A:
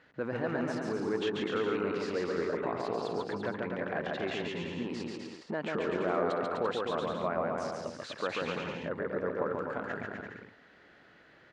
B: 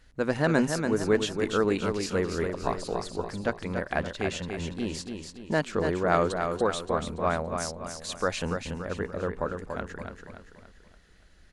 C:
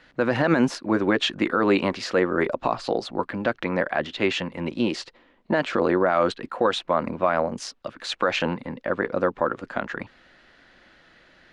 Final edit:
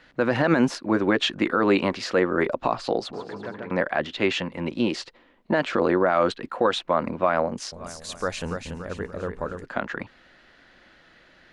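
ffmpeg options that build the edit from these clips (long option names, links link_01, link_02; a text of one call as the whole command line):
ffmpeg -i take0.wav -i take1.wav -i take2.wav -filter_complex "[2:a]asplit=3[link_01][link_02][link_03];[link_01]atrim=end=3.132[link_04];[0:a]atrim=start=3.128:end=3.712[link_05];[link_02]atrim=start=3.708:end=7.722[link_06];[1:a]atrim=start=7.718:end=9.642[link_07];[link_03]atrim=start=9.638[link_08];[link_04][link_05]acrossfade=duration=0.004:curve1=hsin:curve2=hsin[link_09];[link_09][link_06]acrossfade=duration=0.004:curve1=hsin:curve2=hsin[link_10];[link_10][link_07]acrossfade=duration=0.004:curve1=hsin:curve2=hsin[link_11];[link_11][link_08]acrossfade=duration=0.004:curve1=hsin:curve2=hsin" out.wav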